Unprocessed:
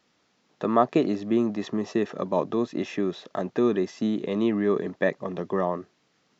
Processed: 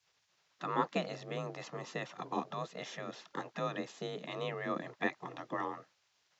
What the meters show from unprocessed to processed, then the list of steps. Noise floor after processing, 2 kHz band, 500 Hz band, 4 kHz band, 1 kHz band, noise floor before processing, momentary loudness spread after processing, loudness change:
-76 dBFS, -5.0 dB, -14.5 dB, -4.0 dB, -7.5 dB, -69 dBFS, 9 LU, -13.0 dB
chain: frequency shift +34 Hz; spectral gate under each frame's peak -10 dB weak; gain -3 dB

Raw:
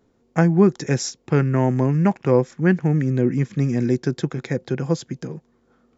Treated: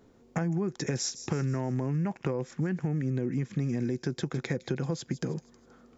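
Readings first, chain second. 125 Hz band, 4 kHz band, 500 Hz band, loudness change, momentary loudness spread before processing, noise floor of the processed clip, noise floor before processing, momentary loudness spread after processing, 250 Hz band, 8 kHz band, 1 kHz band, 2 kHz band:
-10.0 dB, -4.0 dB, -13.0 dB, -11.0 dB, 10 LU, -60 dBFS, -63 dBFS, 4 LU, -11.0 dB, n/a, -12.5 dB, -10.5 dB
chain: limiter -13 dBFS, peak gain reduction 10 dB; compressor 6:1, threshold -31 dBFS, peak gain reduction 13.5 dB; on a send: thin delay 0.159 s, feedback 46%, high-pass 4600 Hz, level -10.5 dB; on the sum: gain +3.5 dB

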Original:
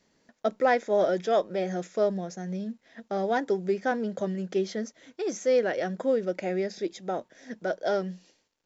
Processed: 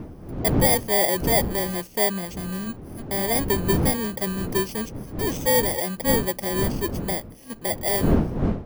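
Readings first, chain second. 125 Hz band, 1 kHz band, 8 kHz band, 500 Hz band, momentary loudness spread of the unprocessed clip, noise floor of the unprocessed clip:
+13.0 dB, +2.5 dB, n/a, +0.5 dB, 11 LU, -74 dBFS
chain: FFT order left unsorted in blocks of 32 samples; wind noise 260 Hz -31 dBFS; gain +3 dB

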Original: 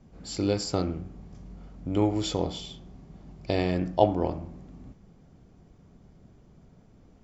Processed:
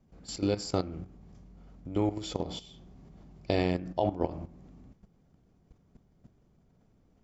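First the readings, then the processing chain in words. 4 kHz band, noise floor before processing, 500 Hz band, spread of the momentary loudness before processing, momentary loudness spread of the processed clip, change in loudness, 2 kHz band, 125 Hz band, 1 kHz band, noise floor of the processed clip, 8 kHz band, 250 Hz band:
-4.5 dB, -56 dBFS, -4.5 dB, 22 LU, 19 LU, -4.0 dB, -2.0 dB, -4.5 dB, -5.5 dB, -66 dBFS, n/a, -4.0 dB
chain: level quantiser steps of 13 dB

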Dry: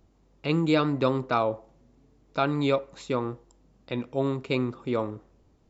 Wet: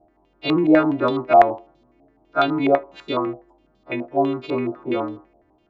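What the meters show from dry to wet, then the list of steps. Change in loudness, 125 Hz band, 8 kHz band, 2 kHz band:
+7.0 dB, -2.5 dB, n/a, +6.0 dB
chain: frequency quantiser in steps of 2 st; small resonant body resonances 330/650 Hz, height 14 dB, ringing for 30 ms; stepped low-pass 12 Hz 720–3700 Hz; gain -3.5 dB

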